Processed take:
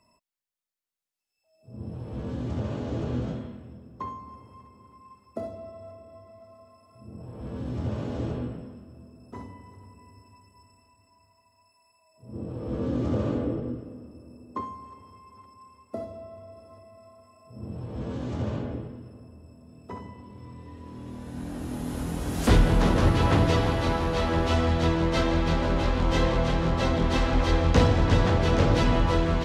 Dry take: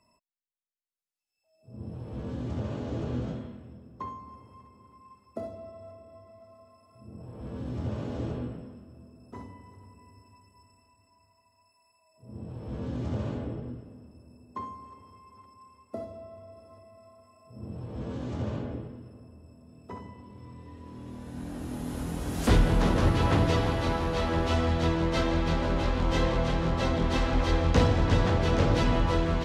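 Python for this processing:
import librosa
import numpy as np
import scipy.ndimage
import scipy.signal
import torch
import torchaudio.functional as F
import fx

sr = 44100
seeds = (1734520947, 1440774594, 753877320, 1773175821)

y = fx.small_body(x, sr, hz=(310.0, 490.0, 1200.0), ring_ms=25, db=8, at=(12.33, 14.61))
y = y * librosa.db_to_amplitude(2.5)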